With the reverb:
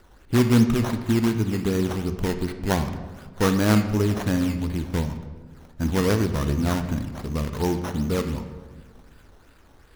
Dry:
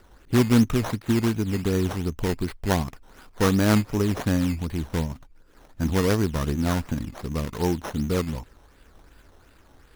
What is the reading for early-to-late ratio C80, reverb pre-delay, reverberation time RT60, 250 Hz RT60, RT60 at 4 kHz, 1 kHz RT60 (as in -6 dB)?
11.0 dB, 21 ms, 1.4 s, 1.6 s, 0.85 s, 1.3 s